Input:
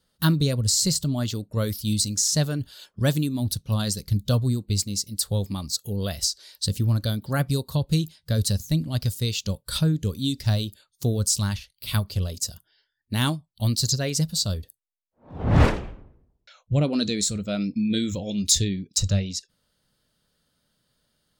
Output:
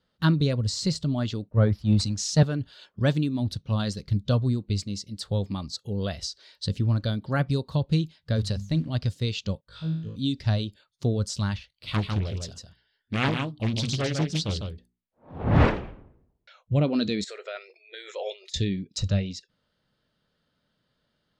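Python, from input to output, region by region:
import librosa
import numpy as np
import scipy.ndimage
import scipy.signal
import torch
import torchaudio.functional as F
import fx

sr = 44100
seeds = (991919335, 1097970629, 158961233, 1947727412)

y = fx.chain(x, sr, fx.low_shelf(hz=100.0, db=10.0),
    fx.leveller(passes=1),
    fx.band_widen(depth_pct=100), at=(1.49, 2.43))
y = fx.chain(y, sr, fx.quant_float(bits=4),
    fx.hum_notches(base_hz=50, count=4), at=(8.36, 8.9))
y = fx.chain(y, sr, fx.air_absorb(metres=71.0),
    fx.comb_fb(f0_hz=54.0, decay_s=0.71, harmonics='all', damping=0.0, mix_pct=100), at=(9.61, 10.16))
y = fx.chain(y, sr, fx.hum_notches(base_hz=60, count=7),
    fx.echo_single(ms=151, db=-5.0),
    fx.doppler_dist(depth_ms=0.94), at=(11.7, 15.46))
y = fx.chain(y, sr, fx.peak_eq(hz=1800.0, db=12.5, octaves=0.65),
    fx.over_compress(threshold_db=-31.0, ratio=-1.0),
    fx.brickwall_highpass(low_hz=360.0), at=(17.24, 18.54))
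y = scipy.signal.sosfilt(scipy.signal.butter(2, 3400.0, 'lowpass', fs=sr, output='sos'), y)
y = fx.low_shelf(y, sr, hz=62.0, db=-7.5)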